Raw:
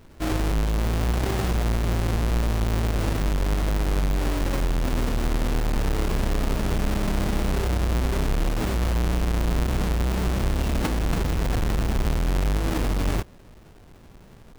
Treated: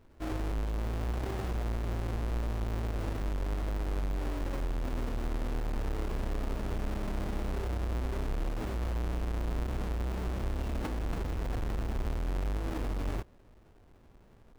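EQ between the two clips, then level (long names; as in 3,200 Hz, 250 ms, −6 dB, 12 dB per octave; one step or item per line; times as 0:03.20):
parametric band 160 Hz −5.5 dB 0.69 octaves
high-shelf EQ 2,400 Hz −7.5 dB
−9.0 dB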